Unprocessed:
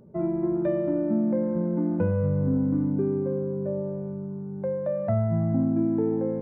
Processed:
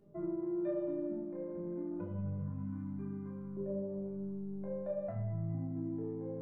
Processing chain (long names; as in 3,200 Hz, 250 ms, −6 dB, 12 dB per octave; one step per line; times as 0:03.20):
0:02.39–0:03.57: drawn EQ curve 170 Hz 0 dB, 450 Hz −21 dB, 1,100 Hz +5 dB
downward compressor, threshold −26 dBFS, peak gain reduction 7 dB
tuned comb filter 200 Hz, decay 0.88 s, mix 90%
rectangular room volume 690 cubic metres, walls furnished, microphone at 3.2 metres
level +2 dB